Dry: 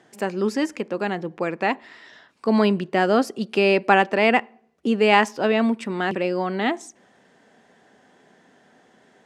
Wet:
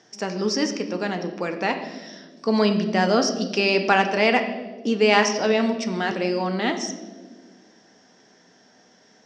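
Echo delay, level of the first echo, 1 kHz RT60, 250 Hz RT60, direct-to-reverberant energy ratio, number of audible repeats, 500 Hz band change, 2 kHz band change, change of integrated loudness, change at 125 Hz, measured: no echo audible, no echo audible, 1.2 s, 2.2 s, 5.5 dB, no echo audible, −0.5 dB, −0.5 dB, −0.5 dB, +0.5 dB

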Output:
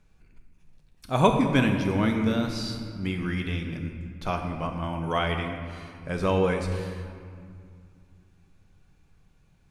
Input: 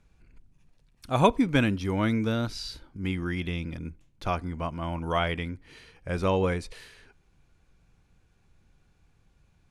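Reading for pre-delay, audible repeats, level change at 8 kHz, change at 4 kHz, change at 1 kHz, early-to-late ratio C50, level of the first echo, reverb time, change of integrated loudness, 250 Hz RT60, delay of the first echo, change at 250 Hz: 5 ms, no echo audible, +1.5 dB, +1.5 dB, +1.5 dB, 6.0 dB, no echo audible, 2.3 s, +1.5 dB, 3.2 s, no echo audible, +2.0 dB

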